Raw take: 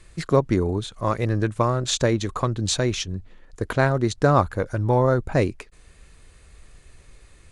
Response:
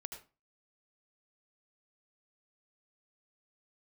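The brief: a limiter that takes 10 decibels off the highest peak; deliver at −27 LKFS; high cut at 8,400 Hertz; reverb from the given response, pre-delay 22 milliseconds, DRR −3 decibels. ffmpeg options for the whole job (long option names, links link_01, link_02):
-filter_complex "[0:a]lowpass=8400,alimiter=limit=-15.5dB:level=0:latency=1,asplit=2[link_01][link_02];[1:a]atrim=start_sample=2205,adelay=22[link_03];[link_02][link_03]afir=irnorm=-1:irlink=0,volume=6dB[link_04];[link_01][link_04]amix=inputs=2:normalize=0,volume=-4.5dB"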